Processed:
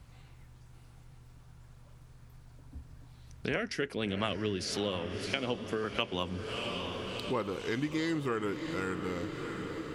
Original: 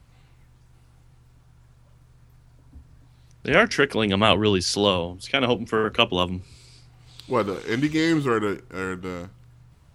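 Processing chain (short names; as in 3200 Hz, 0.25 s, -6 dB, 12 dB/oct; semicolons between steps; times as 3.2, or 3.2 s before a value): 3.56–5.96 rotary speaker horn 5.5 Hz; diffused feedback echo 0.666 s, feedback 59%, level -13 dB; compressor 3:1, threshold -33 dBFS, peak gain reduction 15.5 dB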